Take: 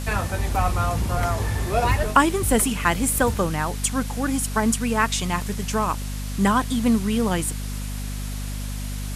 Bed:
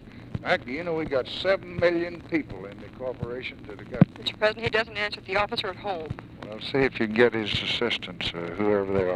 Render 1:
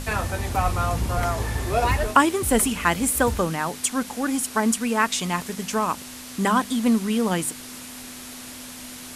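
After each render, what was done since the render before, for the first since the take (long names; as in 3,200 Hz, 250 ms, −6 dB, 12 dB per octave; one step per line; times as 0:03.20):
mains-hum notches 50/100/150/200 Hz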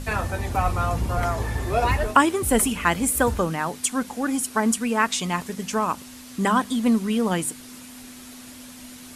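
broadband denoise 6 dB, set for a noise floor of −39 dBFS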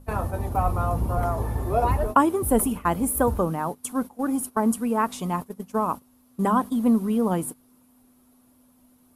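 noise gate −28 dBFS, range −15 dB
flat-topped bell 3,600 Hz −13.5 dB 2.7 octaves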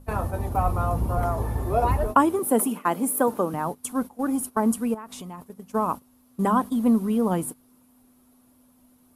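0:02.39–0:03.54: high-pass filter 200 Hz 24 dB per octave
0:04.94–0:05.69: downward compressor 16 to 1, threshold −34 dBFS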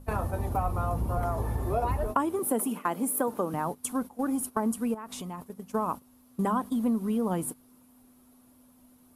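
downward compressor 2.5 to 1, threshold −27 dBFS, peak gain reduction 10 dB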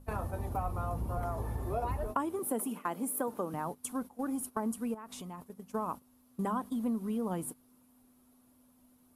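level −6 dB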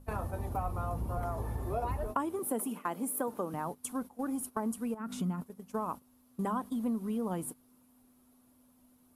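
0:04.99–0:05.42: hollow resonant body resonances 200/1,400 Hz, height 17 dB → 13 dB, ringing for 30 ms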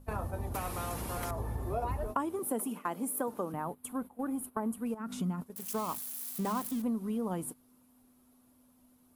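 0:00.54–0:01.31: every bin compressed towards the loudest bin 2 to 1
0:03.52–0:04.86: parametric band 5,700 Hz −12.5 dB 0.93 octaves
0:05.56–0:06.82: spike at every zero crossing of −32 dBFS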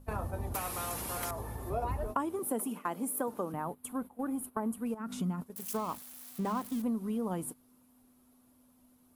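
0:00.54–0:01.70: spectral tilt +1.5 dB per octave
0:05.77–0:06.72: high-shelf EQ 4,900 Hz −10 dB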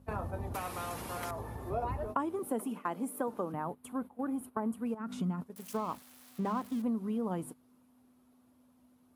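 high-pass filter 67 Hz
high-shelf EQ 6,400 Hz −12 dB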